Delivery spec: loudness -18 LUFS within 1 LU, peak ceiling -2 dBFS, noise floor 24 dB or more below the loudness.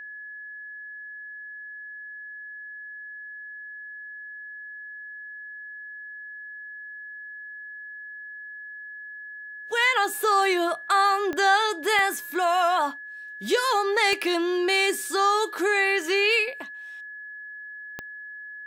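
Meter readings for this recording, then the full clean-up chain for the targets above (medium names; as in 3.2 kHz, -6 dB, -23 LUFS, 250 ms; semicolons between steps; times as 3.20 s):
clicks found 4; steady tone 1.7 kHz; tone level -37 dBFS; loudness -22.5 LUFS; peak level -8.5 dBFS; loudness target -18.0 LUFS
-> de-click; band-stop 1.7 kHz, Q 30; trim +4.5 dB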